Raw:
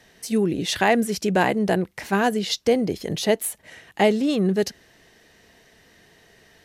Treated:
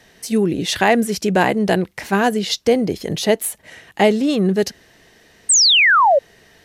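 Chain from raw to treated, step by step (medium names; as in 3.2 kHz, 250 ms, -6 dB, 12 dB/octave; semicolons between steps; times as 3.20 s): 1.57–1.99 s: dynamic bell 3.7 kHz, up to +5 dB, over -42 dBFS, Q 0.86; 5.49–6.19 s: painted sound fall 520–8800 Hz -16 dBFS; trim +4 dB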